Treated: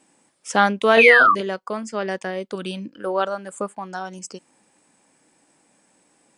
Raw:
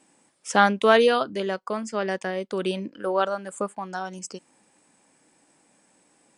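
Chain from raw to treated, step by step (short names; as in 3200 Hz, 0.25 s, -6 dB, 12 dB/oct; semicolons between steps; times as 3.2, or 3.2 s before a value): 2.55–2.96 thirty-one-band EQ 400 Hz -10 dB, 630 Hz -11 dB, 1000 Hz -5 dB, 2000 Hz -7 dB; 0.98–1.32 painted sound fall 1100–2700 Hz -16 dBFS; 0.94–1.41 doubler 31 ms -3 dB; gain +1 dB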